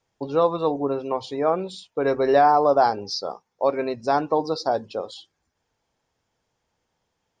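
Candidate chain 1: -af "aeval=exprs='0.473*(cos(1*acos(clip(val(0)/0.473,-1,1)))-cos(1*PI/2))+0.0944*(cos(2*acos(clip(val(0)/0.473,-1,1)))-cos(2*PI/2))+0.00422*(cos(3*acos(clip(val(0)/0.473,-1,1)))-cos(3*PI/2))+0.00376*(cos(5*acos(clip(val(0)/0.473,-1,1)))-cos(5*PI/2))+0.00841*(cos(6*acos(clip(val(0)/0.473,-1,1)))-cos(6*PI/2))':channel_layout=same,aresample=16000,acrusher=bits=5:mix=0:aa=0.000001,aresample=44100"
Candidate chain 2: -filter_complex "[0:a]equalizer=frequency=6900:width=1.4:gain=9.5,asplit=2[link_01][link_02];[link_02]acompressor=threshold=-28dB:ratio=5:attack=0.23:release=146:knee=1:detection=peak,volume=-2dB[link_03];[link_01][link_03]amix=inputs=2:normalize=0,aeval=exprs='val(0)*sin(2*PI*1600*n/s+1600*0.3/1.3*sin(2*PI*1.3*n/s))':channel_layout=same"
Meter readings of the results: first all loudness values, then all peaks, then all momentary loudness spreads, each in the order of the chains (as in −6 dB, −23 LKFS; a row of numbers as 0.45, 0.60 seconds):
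−22.0, −22.0 LKFS; −4.0, −6.0 dBFS; 13, 12 LU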